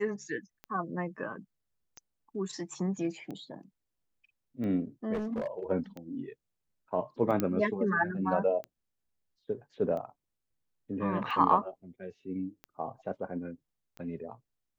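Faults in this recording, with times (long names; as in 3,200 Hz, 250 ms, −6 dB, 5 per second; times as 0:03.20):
scratch tick 45 rpm −29 dBFS
0:05.13–0:05.64: clipping −29 dBFS
0:07.40: click −15 dBFS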